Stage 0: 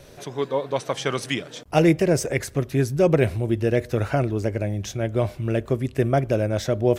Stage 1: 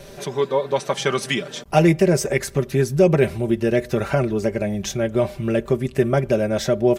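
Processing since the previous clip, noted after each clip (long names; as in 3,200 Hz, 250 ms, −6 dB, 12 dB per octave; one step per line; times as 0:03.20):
comb filter 5.1 ms, depth 62%
in parallel at −0.5 dB: downward compressor, threshold −26 dBFS, peak gain reduction 14.5 dB
on the sum: level −1 dB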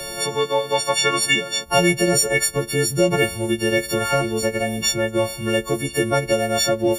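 every partial snapped to a pitch grid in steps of 4 semitones
parametric band 190 Hz −4 dB 2 octaves
multiband upward and downward compressor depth 40%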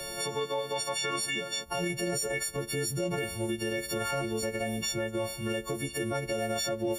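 brickwall limiter −15 dBFS, peak gain reduction 11 dB
level −7.5 dB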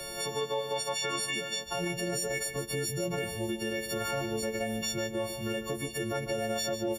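single-tap delay 150 ms −10 dB
level −1.5 dB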